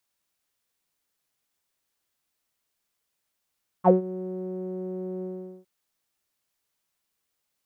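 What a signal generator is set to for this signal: synth note saw F#3 12 dB/oct, low-pass 440 Hz, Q 9.6, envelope 1.5 oct, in 0.07 s, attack 41 ms, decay 0.13 s, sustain -18 dB, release 0.42 s, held 1.39 s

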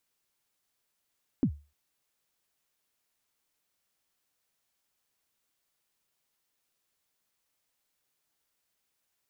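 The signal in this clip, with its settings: kick drum length 0.30 s, from 310 Hz, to 73 Hz, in 77 ms, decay 0.30 s, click off, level -18 dB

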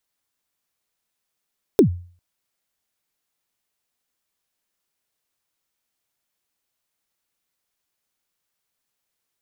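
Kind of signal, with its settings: kick drum length 0.40 s, from 460 Hz, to 88 Hz, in 0.1 s, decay 0.44 s, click on, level -6 dB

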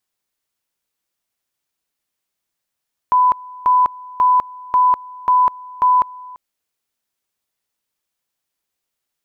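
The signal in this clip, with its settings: two-level tone 1000 Hz -9.5 dBFS, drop 22.5 dB, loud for 0.20 s, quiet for 0.34 s, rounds 6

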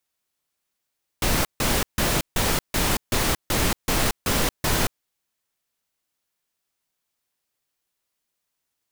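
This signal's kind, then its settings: noise bursts pink, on 0.23 s, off 0.15 s, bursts 10, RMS -21.5 dBFS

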